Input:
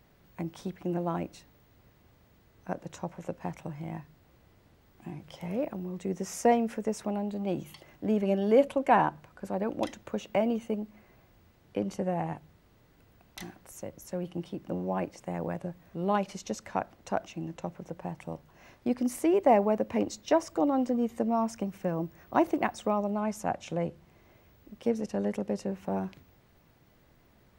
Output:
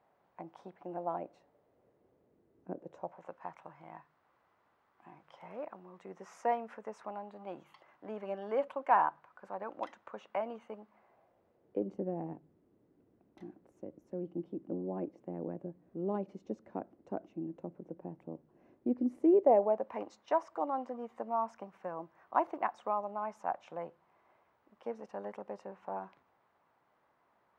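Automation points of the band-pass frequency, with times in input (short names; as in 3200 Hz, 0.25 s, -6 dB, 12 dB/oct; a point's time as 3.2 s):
band-pass, Q 1.9
0.91 s 810 Hz
2.71 s 320 Hz
3.3 s 1100 Hz
10.83 s 1100 Hz
11.96 s 320 Hz
19.24 s 320 Hz
19.93 s 1000 Hz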